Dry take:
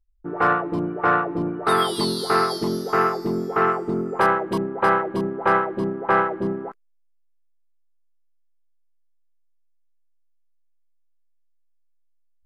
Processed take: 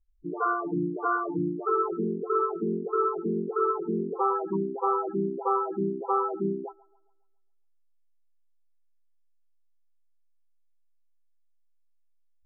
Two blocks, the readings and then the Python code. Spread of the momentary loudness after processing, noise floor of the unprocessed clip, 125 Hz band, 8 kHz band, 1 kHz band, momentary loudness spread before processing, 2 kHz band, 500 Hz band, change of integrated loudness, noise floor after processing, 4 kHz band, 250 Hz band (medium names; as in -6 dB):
4 LU, -63 dBFS, -6.0 dB, no reading, -7.0 dB, 6 LU, under -10 dB, -4.5 dB, -6.5 dB, -65 dBFS, under -40 dB, -4.5 dB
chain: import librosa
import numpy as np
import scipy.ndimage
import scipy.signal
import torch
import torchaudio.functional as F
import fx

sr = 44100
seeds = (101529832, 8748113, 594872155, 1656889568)

y = fx.air_absorb(x, sr, metres=360.0)
y = fx.echo_wet_bandpass(y, sr, ms=137, feedback_pct=45, hz=1100.0, wet_db=-19)
y = fx.spec_topn(y, sr, count=8)
y = F.gain(torch.from_numpy(y), -2.0).numpy()